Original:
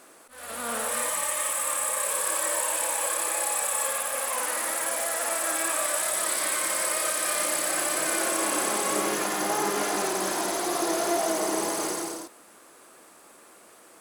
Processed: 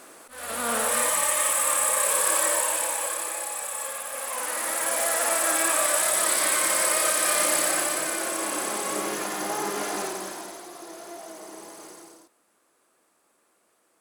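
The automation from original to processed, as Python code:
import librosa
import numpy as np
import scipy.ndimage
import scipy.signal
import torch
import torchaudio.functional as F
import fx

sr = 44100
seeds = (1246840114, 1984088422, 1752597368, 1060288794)

y = fx.gain(x, sr, db=fx.line((2.4, 4.5), (3.5, -5.0), (4.03, -5.0), (5.07, 4.0), (7.62, 4.0), (8.16, -2.5), (10.01, -2.5), (10.72, -15.0)))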